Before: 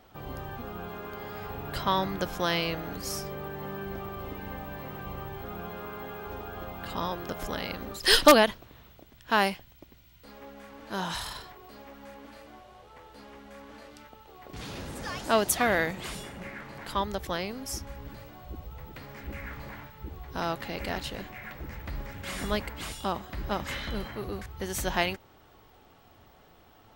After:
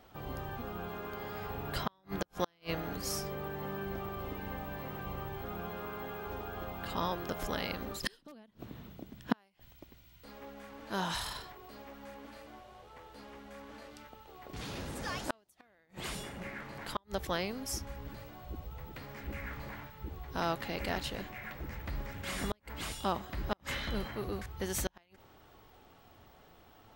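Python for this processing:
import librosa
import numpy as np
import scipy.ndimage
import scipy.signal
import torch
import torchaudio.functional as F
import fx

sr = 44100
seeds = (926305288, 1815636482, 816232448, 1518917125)

y = fx.gate_flip(x, sr, shuts_db=-17.0, range_db=-40)
y = fx.peak_eq(y, sr, hz=210.0, db=14.0, octaves=1.8, at=(8.03, 9.34))
y = y * librosa.db_to_amplitude(-2.0)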